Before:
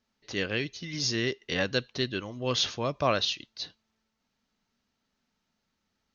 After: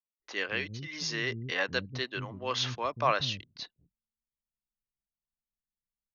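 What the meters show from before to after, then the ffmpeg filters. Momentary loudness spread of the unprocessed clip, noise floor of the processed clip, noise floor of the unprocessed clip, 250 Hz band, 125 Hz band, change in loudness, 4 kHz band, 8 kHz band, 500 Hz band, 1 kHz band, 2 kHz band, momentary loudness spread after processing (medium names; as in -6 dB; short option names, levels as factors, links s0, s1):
9 LU, under -85 dBFS, -80 dBFS, -7.0 dB, -3.0 dB, -2.5 dB, -4.0 dB, no reading, -4.5 dB, +2.0 dB, +0.5 dB, 11 LU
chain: -filter_complex "[0:a]anlmdn=0.0398,equalizer=f=125:t=o:w=1:g=4,equalizer=f=1000:t=o:w=1:g=8,equalizer=f=2000:t=o:w=1:g=6,acrossover=split=260[s0][s1];[s0]adelay=190[s2];[s2][s1]amix=inputs=2:normalize=0,volume=0.501"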